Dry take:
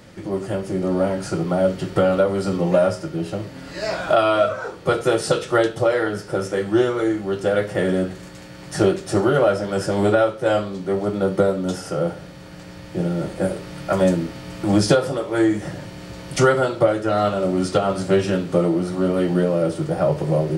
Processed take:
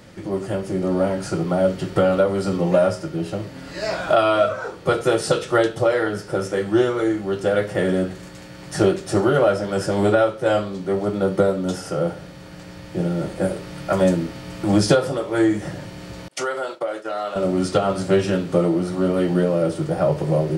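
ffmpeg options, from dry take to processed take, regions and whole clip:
-filter_complex "[0:a]asettb=1/sr,asplit=3[a][b][c];[a]atrim=end=16.284[d];[b]atrim=start=16.28:end=17.36,asetpts=PTS-STARTPTS,afade=t=in:d=0.004:c=qsin,afade=t=out:st=1.076:d=0.004:c=qsin,highpass=460,agate=range=-33dB:threshold=-27dB:ratio=3:release=100:detection=peak,acompressor=threshold=-26dB:ratio=2:attack=3.2:release=140:knee=1:detection=peak[e];[c]atrim=start=17.356[f];[d][e]acrossfade=d=0.004:c1=hsin:c2=qsin[g];[g][f]acrossfade=d=0.004:c1=qsin:c2=hsin"

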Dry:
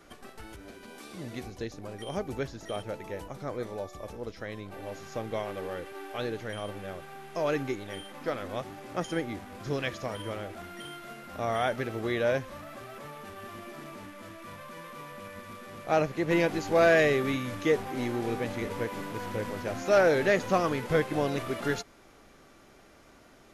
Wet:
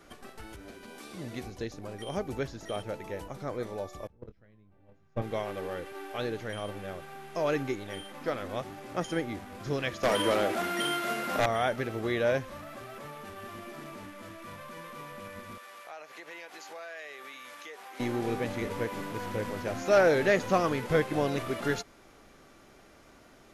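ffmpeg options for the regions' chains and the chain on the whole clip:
-filter_complex "[0:a]asettb=1/sr,asplit=3[a][b][c];[a]atrim=end=4.074[d];[b]atrim=start=4.07:end=5.22,asetpts=PTS-STARTPTS,afade=t=in:d=0.004:c=qsin,afade=t=out:st=1.146:d=0.004:c=qsin,agate=range=-27dB:threshold=-34dB:ratio=16:release=100:detection=peak,bass=f=250:g=13,treble=f=4k:g=-13,asplit=2[e][f];[f]adelay=24,volume=-11dB[g];[e][g]amix=inputs=2:normalize=0,atrim=end_sample=50715[h];[c]atrim=start=5.216[i];[d][h]acrossfade=d=0.004:c1=hsin:c2=qsin[j];[j][i]acrossfade=d=0.004:c1=qsin:c2=hsin,asettb=1/sr,asplit=3[k][l][m];[k]atrim=end=10.034[n];[l]atrim=start=10.03:end=11.46,asetpts=PTS-STARTPTS,afade=t=in:d=0.004:c=qsin,afade=t=out:st=1.426:d=0.004:c=qsin,highpass=220,aeval=exprs='0.112*sin(PI/2*2.82*val(0)/0.112)':c=same[o];[m]atrim=start=11.456[p];[n][o]acrossfade=d=0.004:c1=hsin:c2=qsin[q];[q][p]acrossfade=d=0.004:c1=qsin:c2=hsin,asettb=1/sr,asplit=3[r][s][t];[r]atrim=end=15.584[u];[s]atrim=start=15.58:end=18,asetpts=PTS-STARTPTS,afade=t=in:d=0.004:c=qsin,afade=t=out:st=2.416:d=0.004:c=qsin,highpass=830,acompressor=threshold=-43dB:ratio=4:attack=3.2:release=140:knee=1:detection=peak[v];[t]atrim=start=17.996[w];[u][v]acrossfade=d=0.004:c1=hsin:c2=qsin[x];[x][w]acrossfade=d=0.004:c1=qsin:c2=hsin"

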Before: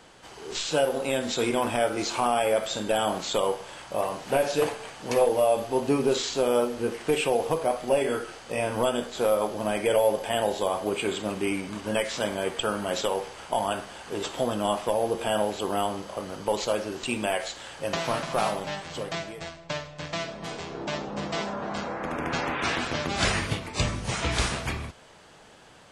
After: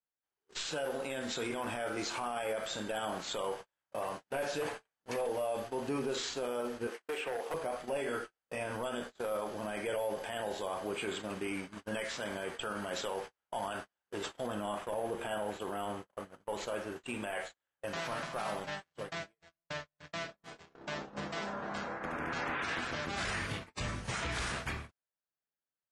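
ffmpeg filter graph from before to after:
-filter_complex "[0:a]asettb=1/sr,asplit=3[a][b][c];[a]atrim=end=6.874[d];[b]atrim=start=6.87:end=7.54,asetpts=PTS-STARTPTS,afade=t=in:d=0.004:c=qsin,afade=t=out:st=0.666:d=0.004:c=qsin,highpass=370,acrossover=split=610|2600[e][f][g];[e]acompressor=threshold=-27dB:ratio=4[h];[f]acompressor=threshold=-31dB:ratio=4[i];[g]acompressor=threshold=-42dB:ratio=4[j];[h][i][j]amix=inputs=3:normalize=0,asoftclip=type=hard:threshold=-25dB[k];[c]atrim=start=7.536[l];[d][k]acrossfade=d=0.004:c1=hsin:c2=qsin[m];[m][l]acrossfade=d=0.004:c1=qsin:c2=hsin,asettb=1/sr,asplit=3[n][o][p];[n]atrim=end=14.464[q];[o]atrim=start=14.46:end=17.88,asetpts=PTS-STARTPTS,afade=t=in:d=0.004:c=qsin,afade=t=out:st=3.416:d=0.004:c=qsin,equalizer=f=4.9k:w=1.5:g=-7,asplit=2[r][s];[s]adelay=49,volume=-13.5dB[t];[r][t]amix=inputs=2:normalize=0,atrim=end_sample=150822[u];[p]atrim=start=17.876[v];[q][u]acrossfade=d=0.004:c1=hsin:c2=qsin[w];[w][v]acrossfade=d=0.004:c1=qsin:c2=hsin,agate=range=-44dB:threshold=-33dB:ratio=16:detection=peak,equalizer=f=1.6k:t=o:w=0.88:g=6,alimiter=limit=-19dB:level=0:latency=1:release=20,volume=-8dB"

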